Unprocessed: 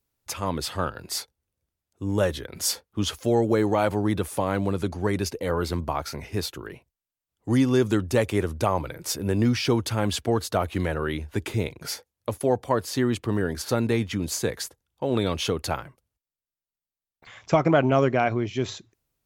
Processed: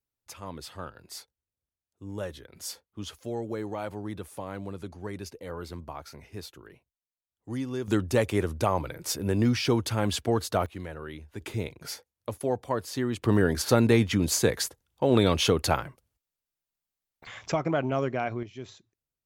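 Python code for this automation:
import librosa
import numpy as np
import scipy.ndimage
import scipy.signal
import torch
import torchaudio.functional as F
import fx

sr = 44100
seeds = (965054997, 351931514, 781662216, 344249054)

y = fx.gain(x, sr, db=fx.steps((0.0, -12.0), (7.88, -2.0), (10.66, -12.0), (11.41, -5.5), (13.22, 3.0), (17.52, -7.5), (18.43, -14.0)))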